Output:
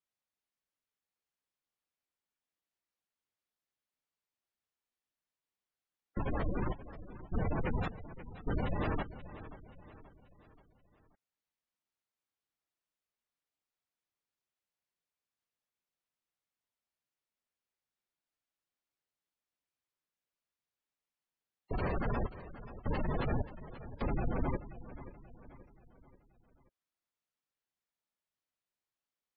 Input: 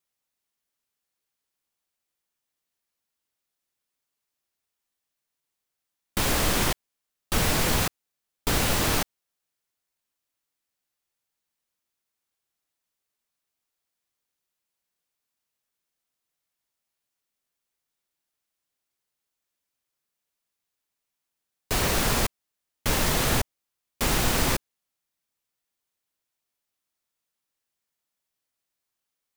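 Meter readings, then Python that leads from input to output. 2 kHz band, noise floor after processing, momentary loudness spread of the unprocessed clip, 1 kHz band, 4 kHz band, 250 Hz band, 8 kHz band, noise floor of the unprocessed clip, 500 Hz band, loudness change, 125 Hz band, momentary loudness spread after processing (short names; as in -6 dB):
-16.0 dB, under -85 dBFS, 9 LU, -11.0 dB, -28.5 dB, -7.0 dB, under -40 dB, -84 dBFS, -8.5 dB, -13.0 dB, -6.5 dB, 18 LU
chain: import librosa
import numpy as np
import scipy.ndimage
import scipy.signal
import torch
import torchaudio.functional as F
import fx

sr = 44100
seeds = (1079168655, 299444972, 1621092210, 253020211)

y = fx.high_shelf(x, sr, hz=5500.0, db=-11.0)
y = fx.echo_feedback(y, sr, ms=531, feedback_pct=46, wet_db=-14.5)
y = fx.spec_gate(y, sr, threshold_db=-15, keep='strong')
y = F.gain(torch.from_numpy(y), -6.5).numpy()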